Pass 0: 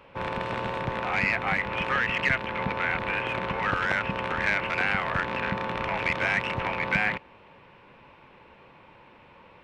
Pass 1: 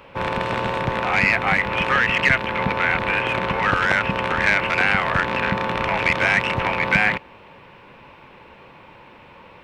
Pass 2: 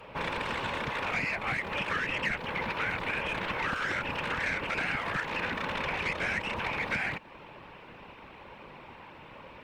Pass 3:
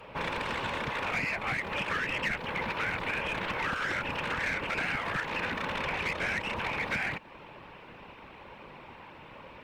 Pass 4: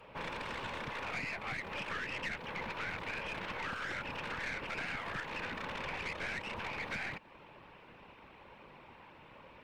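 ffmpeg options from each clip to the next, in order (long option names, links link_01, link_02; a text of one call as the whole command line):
ffmpeg -i in.wav -af "highshelf=frequency=6000:gain=5,volume=7dB" out.wav
ffmpeg -i in.wav -filter_complex "[0:a]afftfilt=real='hypot(re,im)*cos(2*PI*random(0))':imag='hypot(re,im)*sin(2*PI*random(1))':win_size=512:overlap=0.75,acrossover=split=480|1300|5400[link_01][link_02][link_03][link_04];[link_01]acompressor=threshold=-42dB:ratio=4[link_05];[link_02]acompressor=threshold=-45dB:ratio=4[link_06];[link_03]acompressor=threshold=-36dB:ratio=4[link_07];[link_04]acompressor=threshold=-56dB:ratio=4[link_08];[link_05][link_06][link_07][link_08]amix=inputs=4:normalize=0,volume=3dB" out.wav
ffmpeg -i in.wav -af "aeval=exprs='clip(val(0),-1,0.0531)':channel_layout=same" out.wav
ffmpeg -i in.wav -af "aeval=exprs='(tanh(17.8*val(0)+0.45)-tanh(0.45))/17.8':channel_layout=same,volume=-5.5dB" out.wav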